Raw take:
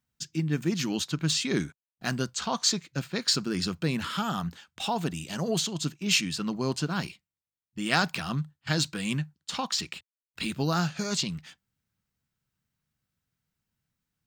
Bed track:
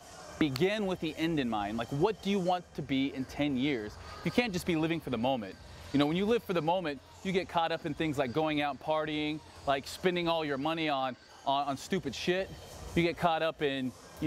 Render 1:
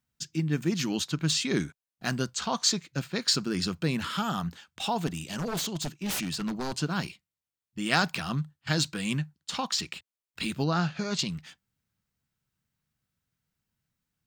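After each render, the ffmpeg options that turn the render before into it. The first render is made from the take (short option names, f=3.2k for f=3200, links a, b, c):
-filter_complex "[0:a]asettb=1/sr,asplit=3[a][b][c];[a]atrim=end=5.074[d];[b]atrim=start=5.07:end=6.75,asetpts=PTS-STARTPTS,afade=t=in:d=0.004:c=qsin,afade=t=out:st=1.676:d=0.004:c=qsin,aeval=exprs='0.0501*(abs(mod(val(0)/0.0501+3,4)-2)-1)':c=same[e];[c]atrim=start=6.746[f];[d][e]acrossfade=d=0.004:c1=hsin:c2=qsin[g];[g][f]acrossfade=d=0.004:c1=qsin:c2=hsin,asettb=1/sr,asplit=3[h][i][j];[h]atrim=end=10.644[k];[i]atrim=start=10.64:end=11.19,asetpts=PTS-STARTPTS,afade=t=in:d=0.004:c=qsin,afade=t=out:st=0.546:d=0.004:c=qsin,lowpass=4.2k[l];[j]atrim=start=11.186[m];[k][l]acrossfade=d=0.004:c1=hsin:c2=qsin[n];[n][m]acrossfade=d=0.004:c1=qsin:c2=hsin"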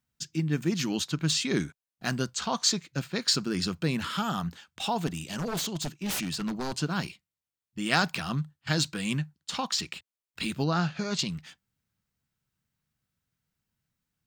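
-af anull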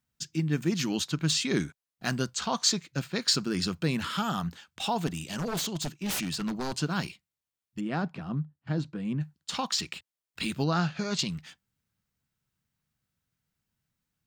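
-filter_complex "[0:a]asplit=3[a][b][c];[a]afade=t=out:st=7.79:d=0.02[d];[b]bandpass=f=230:t=q:w=0.56,afade=t=in:st=7.79:d=0.02,afade=t=out:st=9.2:d=0.02[e];[c]afade=t=in:st=9.2:d=0.02[f];[d][e][f]amix=inputs=3:normalize=0"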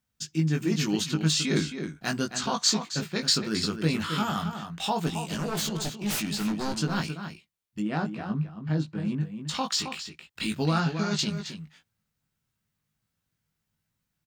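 -filter_complex "[0:a]asplit=2[a][b];[b]adelay=19,volume=-4dB[c];[a][c]amix=inputs=2:normalize=0,asplit=2[d][e];[e]adelay=268.2,volume=-8dB,highshelf=f=4k:g=-6.04[f];[d][f]amix=inputs=2:normalize=0"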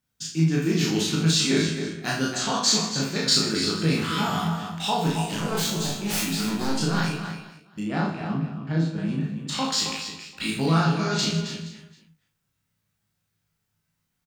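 -filter_complex "[0:a]asplit=2[a][b];[b]adelay=37,volume=-2.5dB[c];[a][c]amix=inputs=2:normalize=0,aecho=1:1:30|78|154.8|277.7|474.3:0.631|0.398|0.251|0.158|0.1"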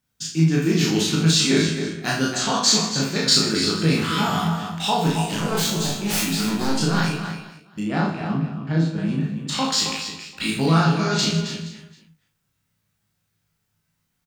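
-af "volume=3.5dB"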